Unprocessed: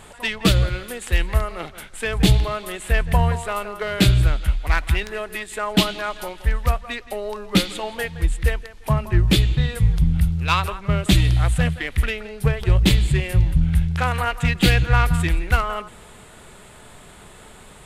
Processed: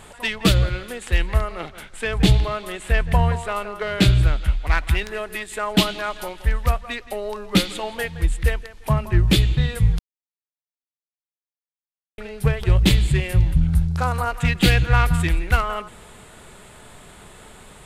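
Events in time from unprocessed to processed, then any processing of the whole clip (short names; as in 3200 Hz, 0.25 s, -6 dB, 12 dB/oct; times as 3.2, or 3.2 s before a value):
0.54–4.89 high shelf 11000 Hz -11.5 dB
9.99–12.18 mute
13.67–14.34 band shelf 2400 Hz -10 dB 1.3 oct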